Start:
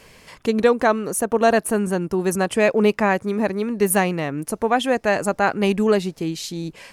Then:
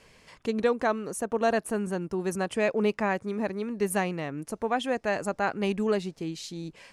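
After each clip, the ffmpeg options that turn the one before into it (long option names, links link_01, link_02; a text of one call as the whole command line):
ffmpeg -i in.wav -af "lowpass=9400,volume=-8.5dB" out.wav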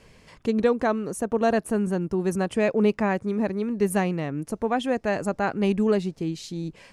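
ffmpeg -i in.wav -af "lowshelf=frequency=410:gain=8" out.wav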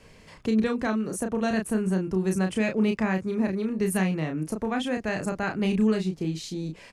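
ffmpeg -i in.wav -filter_complex "[0:a]asplit=2[link_01][link_02];[link_02]adelay=32,volume=-5dB[link_03];[link_01][link_03]amix=inputs=2:normalize=0,acrossover=split=310|1300[link_04][link_05][link_06];[link_05]acompressor=threshold=-32dB:ratio=6[link_07];[link_04][link_07][link_06]amix=inputs=3:normalize=0" out.wav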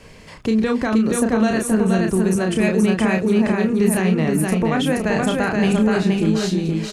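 ffmpeg -i in.wav -af "alimiter=limit=-19.5dB:level=0:latency=1:release=47,aecho=1:1:475|950|1425|1900:0.708|0.219|0.068|0.0211,volume=8.5dB" out.wav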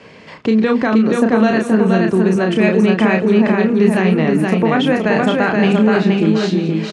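ffmpeg -i in.wav -af "highpass=170,lowpass=3800,aecho=1:1:202:0.1,volume=5.5dB" out.wav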